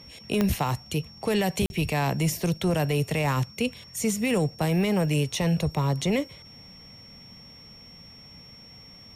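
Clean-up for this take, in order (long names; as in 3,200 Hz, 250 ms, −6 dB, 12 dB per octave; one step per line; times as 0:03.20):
click removal
notch filter 5,500 Hz, Q 30
repair the gap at 0:01.66, 41 ms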